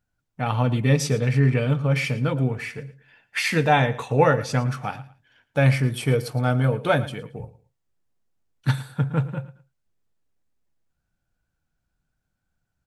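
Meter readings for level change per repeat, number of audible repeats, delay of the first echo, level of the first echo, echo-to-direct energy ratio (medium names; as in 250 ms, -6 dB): -12.5 dB, 2, 112 ms, -17.0 dB, -17.0 dB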